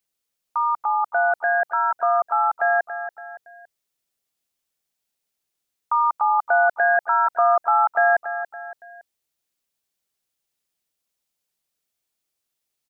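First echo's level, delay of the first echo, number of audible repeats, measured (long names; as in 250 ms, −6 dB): −11.0 dB, 282 ms, 3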